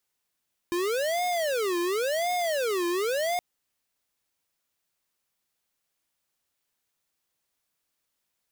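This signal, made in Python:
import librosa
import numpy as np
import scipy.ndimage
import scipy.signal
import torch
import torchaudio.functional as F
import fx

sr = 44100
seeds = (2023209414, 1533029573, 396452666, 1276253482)

y = fx.siren(sr, length_s=2.67, kind='wail', low_hz=345.0, high_hz=719.0, per_s=0.93, wave='square', level_db=-27.0)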